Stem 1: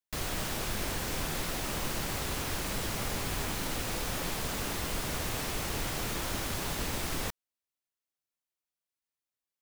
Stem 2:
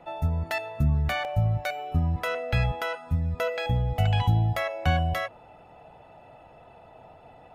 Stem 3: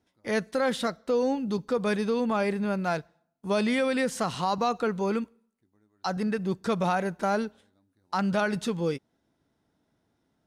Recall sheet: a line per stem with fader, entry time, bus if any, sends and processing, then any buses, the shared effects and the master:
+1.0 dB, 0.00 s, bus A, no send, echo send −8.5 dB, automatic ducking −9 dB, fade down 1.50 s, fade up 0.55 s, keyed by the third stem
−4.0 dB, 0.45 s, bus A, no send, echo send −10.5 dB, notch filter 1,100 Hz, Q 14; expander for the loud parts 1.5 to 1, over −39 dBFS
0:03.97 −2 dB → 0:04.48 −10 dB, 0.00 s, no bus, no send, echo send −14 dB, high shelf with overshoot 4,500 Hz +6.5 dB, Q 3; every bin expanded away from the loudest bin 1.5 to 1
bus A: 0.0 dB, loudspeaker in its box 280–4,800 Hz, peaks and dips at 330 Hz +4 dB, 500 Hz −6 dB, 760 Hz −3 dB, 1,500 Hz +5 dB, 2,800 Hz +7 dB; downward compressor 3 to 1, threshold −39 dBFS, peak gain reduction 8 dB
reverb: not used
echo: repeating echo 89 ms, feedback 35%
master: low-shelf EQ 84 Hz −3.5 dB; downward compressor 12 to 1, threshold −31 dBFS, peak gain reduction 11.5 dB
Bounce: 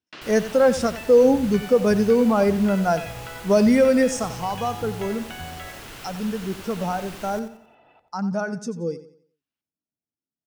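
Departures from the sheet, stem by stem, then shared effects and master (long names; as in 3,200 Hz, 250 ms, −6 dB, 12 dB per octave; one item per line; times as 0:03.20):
stem 2: missing expander for the loud parts 1.5 to 1, over −39 dBFS
stem 3 −2.0 dB → +8.0 dB
master: missing downward compressor 12 to 1, threshold −31 dBFS, peak gain reduction 11.5 dB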